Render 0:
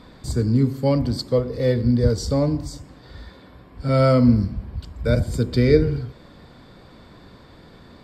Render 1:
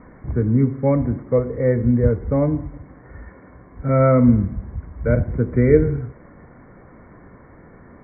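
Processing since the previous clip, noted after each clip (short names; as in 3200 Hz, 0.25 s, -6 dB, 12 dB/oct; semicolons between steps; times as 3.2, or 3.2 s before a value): Chebyshev low-pass 2200 Hz, order 8; gain +2 dB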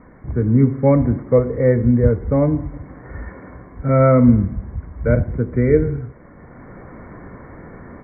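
AGC gain up to 8.5 dB; gain -1 dB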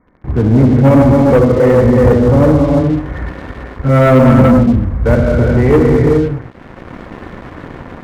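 non-linear reverb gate 0.46 s flat, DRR -1.5 dB; sample leveller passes 3; gain -4 dB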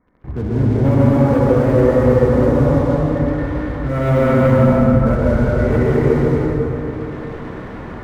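in parallel at 0 dB: compressor, threshold -17 dBFS, peak gain reduction 11.5 dB; on the sum: plate-style reverb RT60 3.8 s, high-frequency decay 0.5×, pre-delay 0.11 s, DRR -5.5 dB; gain -14 dB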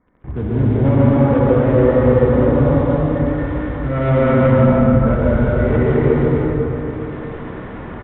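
downsampling 8000 Hz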